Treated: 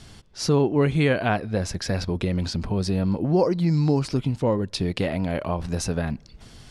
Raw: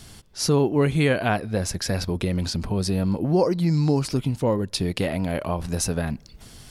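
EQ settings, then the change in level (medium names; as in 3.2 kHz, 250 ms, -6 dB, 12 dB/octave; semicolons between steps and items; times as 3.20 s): distance through air 59 m; 0.0 dB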